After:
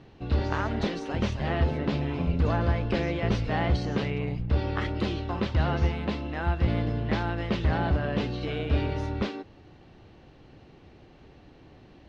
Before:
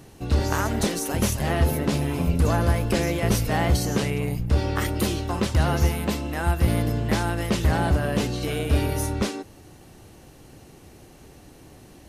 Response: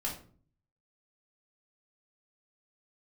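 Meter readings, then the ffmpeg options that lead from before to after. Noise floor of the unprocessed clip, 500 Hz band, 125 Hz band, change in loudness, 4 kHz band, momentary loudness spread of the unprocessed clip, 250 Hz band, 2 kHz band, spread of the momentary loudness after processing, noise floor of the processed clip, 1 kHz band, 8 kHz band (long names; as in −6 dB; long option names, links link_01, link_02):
−49 dBFS, −4.0 dB, −4.0 dB, −4.5 dB, −6.0 dB, 4 LU, −4.0 dB, −4.0 dB, 4 LU, −53 dBFS, −4.0 dB, below −20 dB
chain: -af "lowpass=frequency=4100:width=0.5412,lowpass=frequency=4100:width=1.3066,volume=-4dB"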